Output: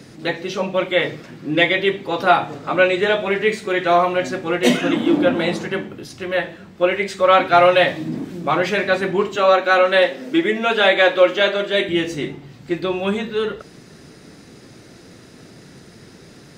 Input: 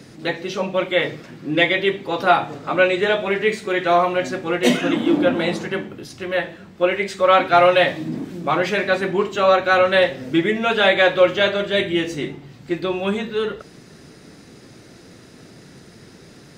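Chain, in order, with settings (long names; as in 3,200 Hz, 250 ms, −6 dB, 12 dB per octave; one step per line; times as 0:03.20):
0:09.36–0:11.89: high-pass filter 210 Hz 24 dB per octave
level +1 dB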